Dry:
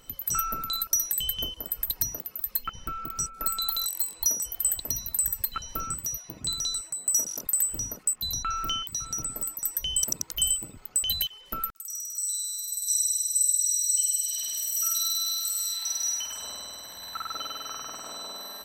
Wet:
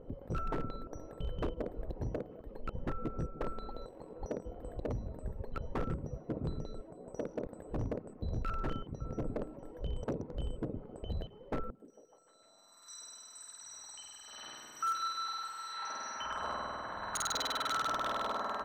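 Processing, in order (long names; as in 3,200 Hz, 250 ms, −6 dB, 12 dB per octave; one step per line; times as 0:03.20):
low-pass filter sweep 510 Hz → 1,300 Hz, 0:12.31–0:12.93
wave folding −33 dBFS
on a send: echo through a band-pass that steps 150 ms, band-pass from 190 Hz, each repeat 0.7 octaves, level −12 dB
on the sum: level +5 dB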